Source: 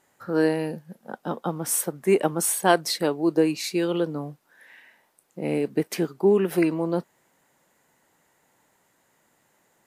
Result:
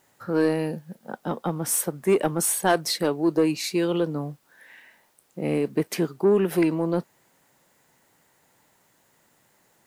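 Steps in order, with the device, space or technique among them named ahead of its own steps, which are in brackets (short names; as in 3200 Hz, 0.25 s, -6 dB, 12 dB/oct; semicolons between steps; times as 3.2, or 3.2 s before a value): open-reel tape (soft clip -13 dBFS, distortion -17 dB; bell 110 Hz +4 dB 1.17 oct; white noise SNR 43 dB); gain +1 dB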